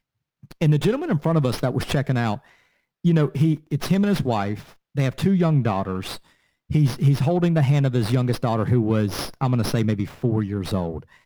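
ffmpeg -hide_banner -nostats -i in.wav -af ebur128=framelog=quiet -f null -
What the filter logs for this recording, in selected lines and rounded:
Integrated loudness:
  I:         -22.1 LUFS
  Threshold: -32.5 LUFS
Loudness range:
  LRA:         2.2 LU
  Threshold: -42.3 LUFS
  LRA low:   -23.4 LUFS
  LRA high:  -21.2 LUFS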